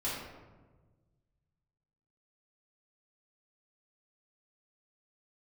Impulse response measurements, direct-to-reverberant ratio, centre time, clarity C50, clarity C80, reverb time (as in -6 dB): -10.0 dB, 75 ms, 0.0 dB, 3.0 dB, 1.3 s